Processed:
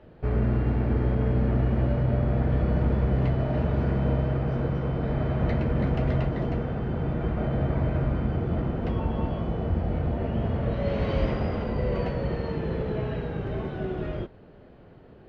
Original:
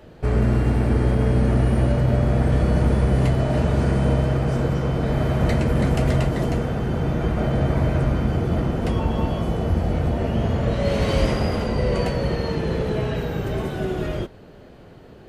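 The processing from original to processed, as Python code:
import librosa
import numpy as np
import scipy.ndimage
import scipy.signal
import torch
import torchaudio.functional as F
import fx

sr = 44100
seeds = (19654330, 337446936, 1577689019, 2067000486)

y = fx.air_absorb(x, sr, metres=280.0)
y = y * 10.0 ** (-5.0 / 20.0)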